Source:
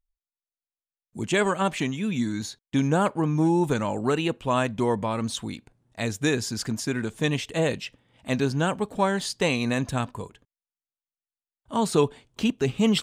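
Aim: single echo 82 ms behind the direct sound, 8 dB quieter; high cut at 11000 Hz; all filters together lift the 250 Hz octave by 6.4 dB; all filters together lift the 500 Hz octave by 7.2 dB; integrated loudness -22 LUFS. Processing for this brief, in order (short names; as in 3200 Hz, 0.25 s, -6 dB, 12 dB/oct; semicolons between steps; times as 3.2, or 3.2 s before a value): LPF 11000 Hz; bell 250 Hz +6 dB; bell 500 Hz +7 dB; echo 82 ms -8 dB; gain -2 dB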